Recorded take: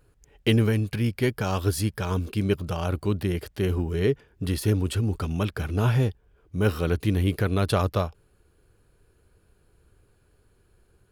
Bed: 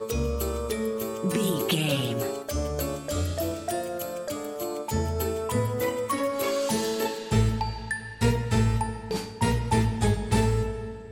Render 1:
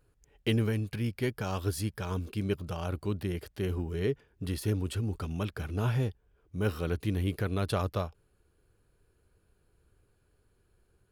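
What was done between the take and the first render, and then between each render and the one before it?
trim -7 dB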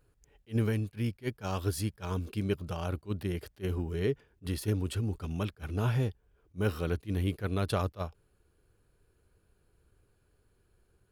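attacks held to a fixed rise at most 400 dB/s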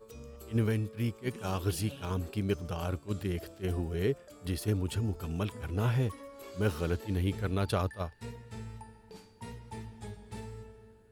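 add bed -20.5 dB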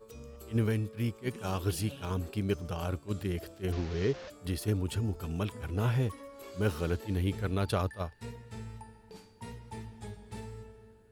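3.72–4.30 s: one-bit delta coder 32 kbps, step -38.5 dBFS

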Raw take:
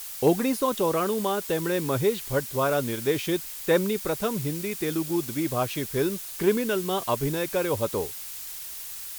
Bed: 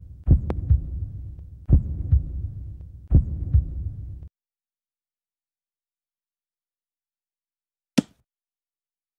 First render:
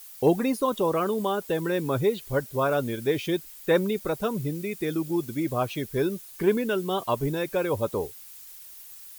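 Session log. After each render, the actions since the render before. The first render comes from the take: noise reduction 11 dB, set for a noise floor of -38 dBFS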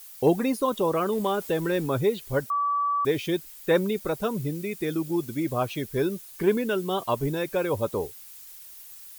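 1.12–1.86 s: companding laws mixed up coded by mu; 2.50–3.05 s: bleep 1.15 kHz -22 dBFS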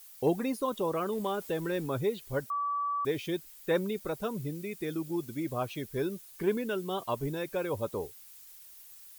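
trim -6.5 dB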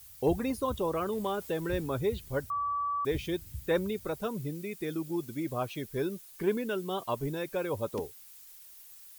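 add bed -23 dB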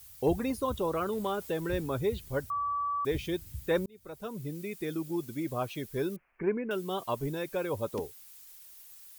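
0.76–1.34 s: small resonant body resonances 1.4/3.9 kHz, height 10 dB; 3.86–4.61 s: fade in; 6.16–6.71 s: elliptic low-pass 2.4 kHz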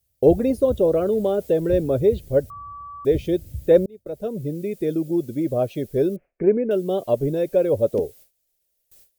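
gate with hold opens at -39 dBFS; resonant low shelf 770 Hz +9 dB, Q 3

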